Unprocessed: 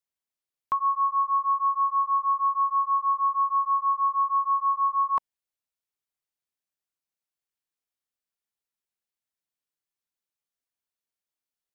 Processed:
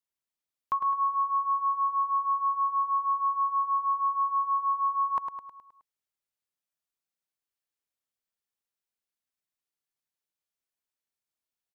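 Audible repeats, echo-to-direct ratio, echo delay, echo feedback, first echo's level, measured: 6, -5.0 dB, 105 ms, 52%, -6.5 dB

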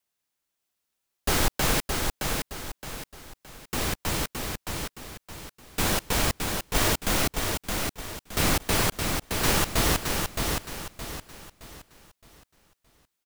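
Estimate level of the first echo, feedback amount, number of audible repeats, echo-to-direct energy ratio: -4.5 dB, 36%, 4, -4.0 dB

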